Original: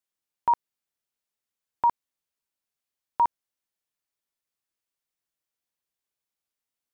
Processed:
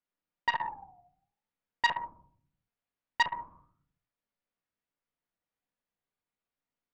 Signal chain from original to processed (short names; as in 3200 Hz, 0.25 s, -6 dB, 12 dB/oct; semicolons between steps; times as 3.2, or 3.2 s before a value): flange 0.49 Hz, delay 7.2 ms, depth 7.7 ms, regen -88%; reverb RT60 0.55 s, pre-delay 4 ms, DRR 3.5 dB; 0.5–3.23 dynamic EQ 700 Hz, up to +4 dB, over -37 dBFS, Q 1.8; Bessel low-pass 2000 Hz; core saturation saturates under 2300 Hz; gain +5 dB